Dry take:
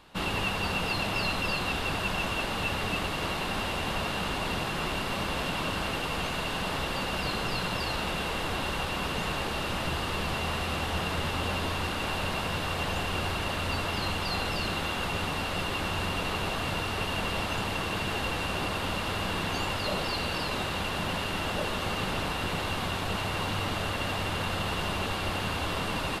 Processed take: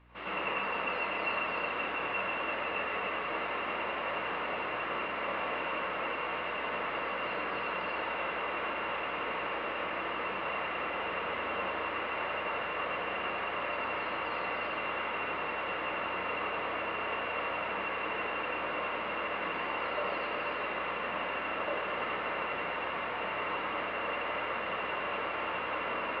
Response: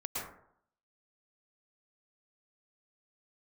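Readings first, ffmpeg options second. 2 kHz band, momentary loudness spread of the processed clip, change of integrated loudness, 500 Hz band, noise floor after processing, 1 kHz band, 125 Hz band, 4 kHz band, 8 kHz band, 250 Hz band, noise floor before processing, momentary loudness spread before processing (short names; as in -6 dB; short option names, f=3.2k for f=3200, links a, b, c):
-1.5 dB, 2 LU, -3.5 dB, -1.5 dB, -36 dBFS, -1.0 dB, -20.0 dB, -10.0 dB, under -35 dB, -9.5 dB, -32 dBFS, 2 LU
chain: -filter_complex "[0:a]highpass=480,equalizer=f=820:t=q:w=4:g=-8,equalizer=f=1.5k:t=q:w=4:g=-4,equalizer=f=2.1k:t=q:w=4:g=3,lowpass=f=2.4k:w=0.5412,lowpass=f=2.4k:w=1.3066[a];[1:a]atrim=start_sample=2205,asetrate=52920,aresample=44100[b];[a][b]afir=irnorm=-1:irlink=0,aeval=exprs='val(0)+0.001*(sin(2*PI*60*n/s)+sin(2*PI*2*60*n/s)/2+sin(2*PI*3*60*n/s)/3+sin(2*PI*4*60*n/s)/4+sin(2*PI*5*60*n/s)/5)':c=same"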